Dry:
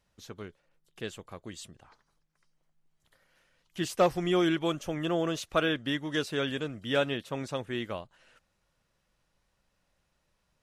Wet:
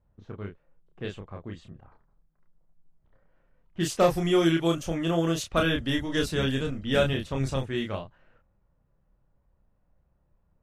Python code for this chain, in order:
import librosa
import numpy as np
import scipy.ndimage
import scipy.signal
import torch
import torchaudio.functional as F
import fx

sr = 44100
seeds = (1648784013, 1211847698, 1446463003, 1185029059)

y = fx.octave_divider(x, sr, octaves=1, level_db=-4.0, at=(5.56, 7.61))
y = fx.low_shelf(y, sr, hz=160.0, db=10.0)
y = fx.doubler(y, sr, ms=30.0, db=-3.5)
y = fx.env_lowpass(y, sr, base_hz=940.0, full_db=-23.0)
y = fx.high_shelf(y, sr, hz=7500.0, db=10.0)